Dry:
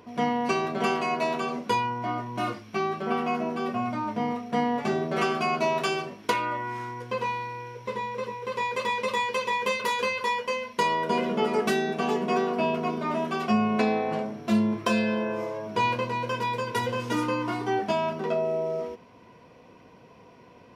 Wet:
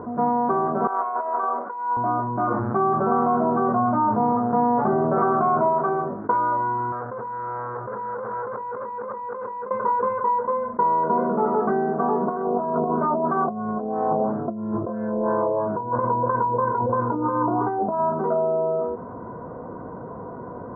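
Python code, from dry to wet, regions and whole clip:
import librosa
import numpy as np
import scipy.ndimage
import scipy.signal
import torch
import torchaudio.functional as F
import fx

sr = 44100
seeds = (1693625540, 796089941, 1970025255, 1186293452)

y = fx.chain(x, sr, fx.highpass(hz=760.0, slope=12),
    fx.over_compress(threshold_db=-33.0, ratio=-0.5), at=(0.87, 1.97))
y = fx.dmg_buzz(y, sr, base_hz=120.0, harmonics=23, level_db=-47.0, tilt_db=-5, odd_only=False, at=(2.5, 5.68), fade=0.02)
y = fx.env_flatten(y, sr, amount_pct=50, at=(2.5, 5.68), fade=0.02)
y = fx.chain(y, sr, fx.over_compress(threshold_db=-38.0, ratio=-1.0),
    fx.low_shelf(hz=170.0, db=-9.5),
    fx.transformer_sat(knee_hz=2900.0), at=(6.92, 9.71))
y = fx.chain(y, sr, fx.over_compress(threshold_db=-29.0, ratio=-0.5),
    fx.filter_lfo_lowpass(shape='sine', hz=3.0, low_hz=580.0, high_hz=2300.0, q=1.3), at=(12.27, 18.0))
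y = fx.dynamic_eq(y, sr, hz=950.0, q=2.0, threshold_db=-39.0, ratio=4.0, max_db=6)
y = scipy.signal.sosfilt(scipy.signal.ellip(4, 1.0, 50, 1400.0, 'lowpass', fs=sr, output='sos'), y)
y = fx.env_flatten(y, sr, amount_pct=50)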